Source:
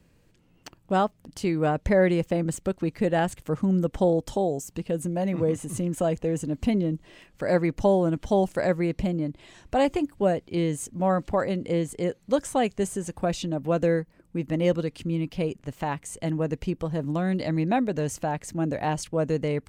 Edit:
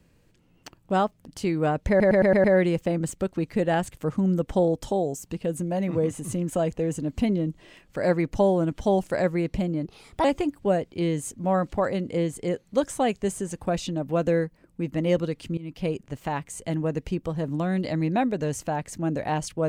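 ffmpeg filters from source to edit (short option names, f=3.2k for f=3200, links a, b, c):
-filter_complex "[0:a]asplit=9[a][b][c][d][e][f][g][h][i];[a]atrim=end=2.002[j];[b]atrim=start=1.888:end=2.002[k];[c]atrim=start=1.888:end=2.002[l];[d]atrim=start=1.888:end=2.002[m];[e]atrim=start=1.888:end=2.002[n];[f]atrim=start=1.888:end=9.304[o];[g]atrim=start=9.3:end=9.8,asetpts=PTS-STARTPTS,asetrate=56007,aresample=44100,atrim=end_sample=17362,asetpts=PTS-STARTPTS[p];[h]atrim=start=9.796:end=15.13,asetpts=PTS-STARTPTS,afade=t=out:st=5.33:d=0.004:c=hsin:silence=0.1[q];[i]atrim=start=15.13,asetpts=PTS-STARTPTS,afade=t=in:d=0.27:silence=0.1[r];[j][k]acrossfade=d=0.004:c1=hsin:c2=hsin[s];[s][l]acrossfade=d=0.004:c1=hsin:c2=hsin[t];[t][m]acrossfade=d=0.004:c1=hsin:c2=hsin[u];[u][n]acrossfade=d=0.004:c1=hsin:c2=hsin[v];[v][o]acrossfade=d=0.004:c1=hsin:c2=hsin[w];[w][p]acrossfade=d=0.004:c1=hsin:c2=hsin[x];[q][r]concat=n=2:v=0:a=1[y];[x][y]acrossfade=d=0.004:c1=hsin:c2=hsin"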